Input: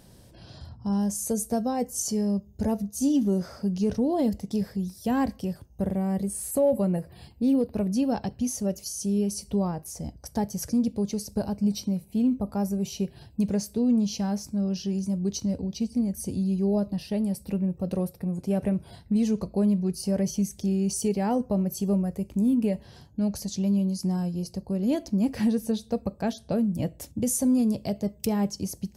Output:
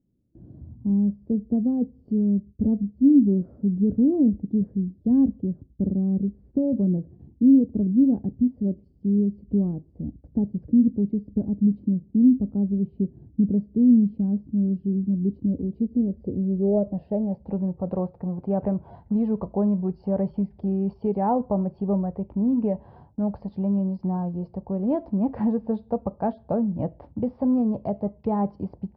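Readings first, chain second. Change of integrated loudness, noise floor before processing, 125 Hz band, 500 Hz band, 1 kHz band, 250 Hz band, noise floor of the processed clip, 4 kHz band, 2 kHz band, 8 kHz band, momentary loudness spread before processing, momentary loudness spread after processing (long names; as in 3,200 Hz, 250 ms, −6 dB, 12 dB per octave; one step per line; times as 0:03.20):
+3.0 dB, −53 dBFS, +2.5 dB, +0.5 dB, +1.5 dB, +4.0 dB, −56 dBFS, below −30 dB, can't be measured, below −40 dB, 7 LU, 10 LU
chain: noise gate with hold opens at −39 dBFS
low-pass filter sweep 290 Hz → 930 Hz, 0:15.31–0:17.74
downsampling to 11,025 Hz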